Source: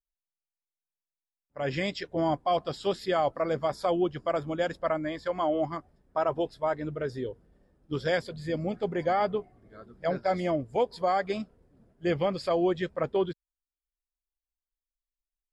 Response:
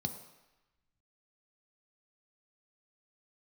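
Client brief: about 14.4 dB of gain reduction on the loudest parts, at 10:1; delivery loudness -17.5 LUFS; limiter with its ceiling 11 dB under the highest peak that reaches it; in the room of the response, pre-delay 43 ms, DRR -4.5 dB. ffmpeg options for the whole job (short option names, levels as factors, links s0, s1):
-filter_complex "[0:a]acompressor=threshold=0.0141:ratio=10,alimiter=level_in=3.35:limit=0.0631:level=0:latency=1,volume=0.299,asplit=2[s0][s1];[1:a]atrim=start_sample=2205,adelay=43[s2];[s1][s2]afir=irnorm=-1:irlink=0,volume=1.58[s3];[s0][s3]amix=inputs=2:normalize=0,volume=7.08"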